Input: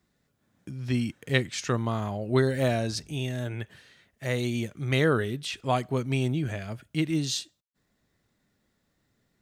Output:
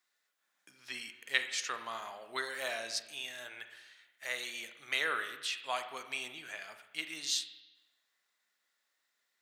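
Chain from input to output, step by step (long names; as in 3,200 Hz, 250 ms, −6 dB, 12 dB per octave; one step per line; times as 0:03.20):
high-pass filter 1,200 Hz 12 dB per octave
convolution reverb RT60 0.95 s, pre-delay 35 ms, DRR 8 dB
level −2 dB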